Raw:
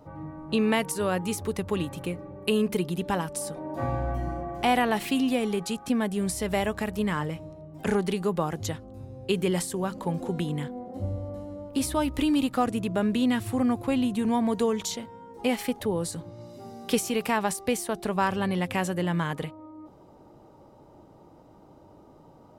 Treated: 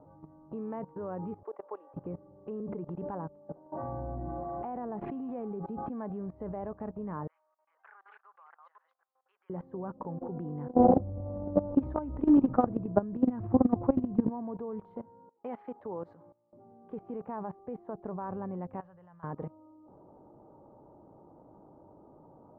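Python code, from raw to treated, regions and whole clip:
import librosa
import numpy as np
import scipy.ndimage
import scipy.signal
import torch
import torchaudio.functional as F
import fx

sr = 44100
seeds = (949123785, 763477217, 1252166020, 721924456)

y = fx.chain(x, sr, fx.highpass(hz=510.0, slope=24),
    fx.air_absorb(metres=120.0), at=(1.43, 1.94))
y = fx.chain(y, sr, fx.harmonic_tremolo(hz=1.3, depth_pct=50, crossover_hz=640.0),
    fx.pre_swell(db_per_s=70.0), at=(2.6, 6.3))
y = fx.chain(y, sr, fx.reverse_delay(ms=252, wet_db=-6),
    fx.highpass(hz=1400.0, slope=24), at=(7.27, 9.5))
y = fx.chain(y, sr, fx.low_shelf(hz=120.0, db=10.0),
    fx.transient(attack_db=3, sustain_db=7),
    fx.env_flatten(amount_pct=100), at=(10.75, 14.3))
y = fx.chain(y, sr, fx.gate_hold(open_db=-31.0, close_db=-38.0, hold_ms=71.0, range_db=-21, attack_ms=1.4, release_ms=100.0),
    fx.tilt_eq(slope=4.0), at=(15.29, 16.53))
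y = fx.chain(y, sr, fx.tone_stack(knobs='10-0-10'),
    fx.notch(hz=2200.0, q=12.0), at=(18.8, 19.24))
y = scipy.signal.sosfilt(scipy.signal.butter(4, 1100.0, 'lowpass', fs=sr, output='sos'), y)
y = fx.low_shelf(y, sr, hz=100.0, db=-7.5)
y = fx.level_steps(y, sr, step_db=19)
y = F.gain(torch.from_numpy(y), 1.0).numpy()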